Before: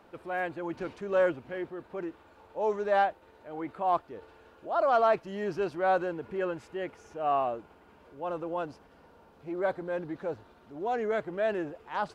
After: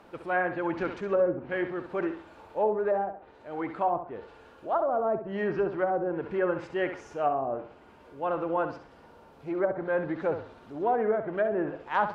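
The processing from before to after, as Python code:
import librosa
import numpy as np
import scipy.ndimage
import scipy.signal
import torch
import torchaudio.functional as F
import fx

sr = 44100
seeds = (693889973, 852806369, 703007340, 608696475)

p1 = fx.env_lowpass_down(x, sr, base_hz=480.0, full_db=-24.0)
p2 = fx.dynamic_eq(p1, sr, hz=1600.0, q=0.9, threshold_db=-49.0, ratio=4.0, max_db=5)
p3 = fx.rider(p2, sr, range_db=3, speed_s=0.5)
p4 = p2 + (p3 * librosa.db_to_amplitude(2.0))
p5 = fx.room_flutter(p4, sr, wall_m=11.4, rt60_s=0.42)
y = p5 * librosa.db_to_amplitude(-3.5)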